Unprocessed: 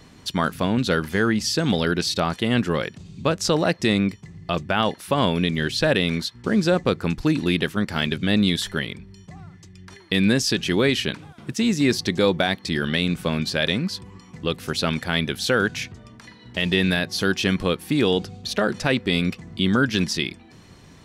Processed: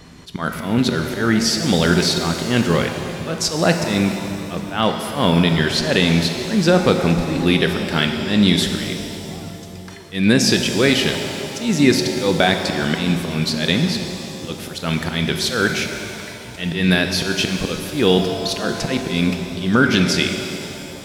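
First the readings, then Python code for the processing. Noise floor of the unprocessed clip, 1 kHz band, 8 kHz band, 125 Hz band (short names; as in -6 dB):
-48 dBFS, +3.5 dB, +6.5 dB, +4.5 dB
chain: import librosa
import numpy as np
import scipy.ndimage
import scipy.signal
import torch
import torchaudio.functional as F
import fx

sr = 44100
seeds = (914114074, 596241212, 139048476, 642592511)

y = fx.auto_swell(x, sr, attack_ms=160.0)
y = fx.rev_shimmer(y, sr, seeds[0], rt60_s=2.6, semitones=7, shimmer_db=-8, drr_db=5.0)
y = F.gain(torch.from_numpy(y), 5.0).numpy()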